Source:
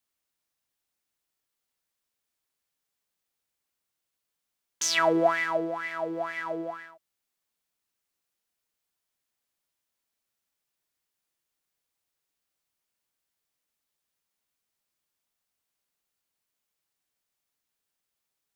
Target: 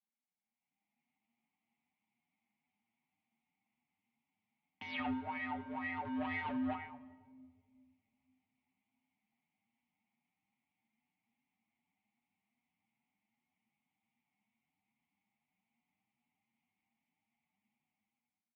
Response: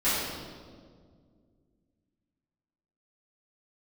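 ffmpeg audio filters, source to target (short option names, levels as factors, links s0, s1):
-filter_complex "[0:a]asplit=3[s0][s1][s2];[s0]bandpass=f=300:t=q:w=8,volume=1[s3];[s1]bandpass=f=870:t=q:w=8,volume=0.501[s4];[s2]bandpass=f=2240:t=q:w=8,volume=0.355[s5];[s3][s4][s5]amix=inputs=3:normalize=0,dynaudnorm=f=210:g=7:m=6.31,alimiter=level_in=1.5:limit=0.0631:level=0:latency=1:release=34,volume=0.668,asettb=1/sr,asplit=3[s6][s7][s8];[s6]atrim=end=5.204[s9];[s7]atrim=start=5.2:end=6.05,asetpts=PTS-STARTPTS,afade=t=in:d=0.004:c=qsin,afade=t=out:st=0.846:d=0.004:c=qsin,acompressor=threshold=0.0112:ratio=2[s10];[s8]atrim=start=6.046[s11];[s9][s10]acrossfade=d=0.004:c1=hsin:c2=qsin[s12];[s12][s11]acrossfade=d=0.004:c1=qsin:c2=hsin,asoftclip=type=hard:threshold=0.0168,asubboost=boost=2.5:cutoff=220,asplit=2[s13][s14];[1:a]atrim=start_sample=2205,lowshelf=f=250:g=10[s15];[s14][s15]afir=irnorm=-1:irlink=0,volume=0.0422[s16];[s13][s16]amix=inputs=2:normalize=0,highpass=f=170:t=q:w=0.5412,highpass=f=170:t=q:w=1.307,lowpass=f=3500:t=q:w=0.5176,lowpass=f=3500:t=q:w=0.7071,lowpass=f=3500:t=q:w=1.932,afreqshift=-73,asplit=2[s17][s18];[s18]adelay=7.3,afreqshift=2.5[s19];[s17][s19]amix=inputs=2:normalize=1,volume=1.5"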